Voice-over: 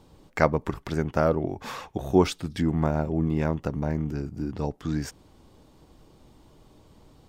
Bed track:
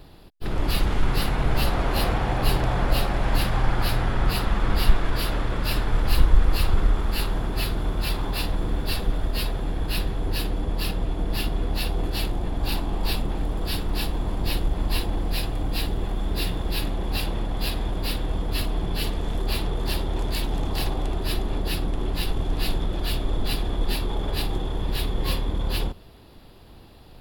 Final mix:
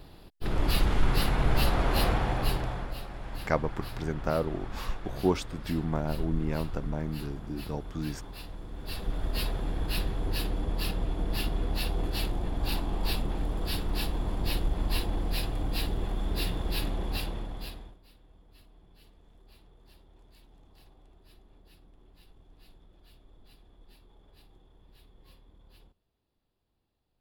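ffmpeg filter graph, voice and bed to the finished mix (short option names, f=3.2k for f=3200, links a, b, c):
-filter_complex "[0:a]adelay=3100,volume=-6dB[a];[1:a]volume=9.5dB,afade=t=out:st=2.09:d=0.85:silence=0.199526,afade=t=in:st=8.72:d=0.66:silence=0.251189,afade=t=out:st=16.98:d=1:silence=0.0421697[b];[a][b]amix=inputs=2:normalize=0"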